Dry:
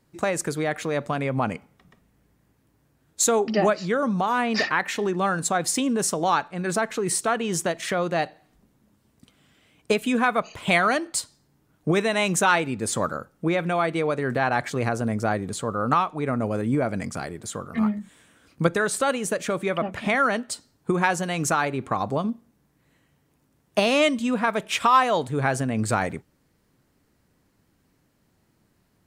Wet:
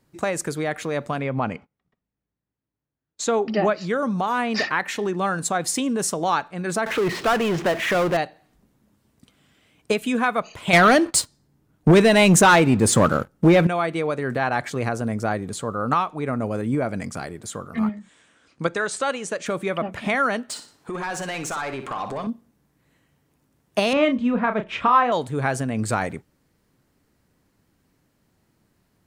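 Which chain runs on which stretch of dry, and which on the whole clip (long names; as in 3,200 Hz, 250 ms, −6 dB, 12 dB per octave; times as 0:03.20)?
0:01.20–0:03.81: low-pass filter 4,500 Hz + noise gate −53 dBFS, range −22 dB
0:06.86–0:08.17: low-pass filter 2,900 Hz 24 dB per octave + low-shelf EQ 160 Hz −10.5 dB + power curve on the samples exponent 0.5
0:10.73–0:13.67: low-shelf EQ 440 Hz +6.5 dB + leveller curve on the samples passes 2
0:17.89–0:19.46: low-pass filter 8,200 Hz 24 dB per octave + low-shelf EQ 260 Hz −9 dB
0:20.50–0:22.27: downward compressor 12 to 1, threshold −29 dBFS + mid-hump overdrive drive 17 dB, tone 4,900 Hz, clips at −19 dBFS + flutter between parallel walls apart 10.2 metres, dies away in 0.35 s
0:23.93–0:25.12: low-pass filter 2,300 Hz + low-shelf EQ 180 Hz +8.5 dB + double-tracking delay 33 ms −8 dB
whole clip: no processing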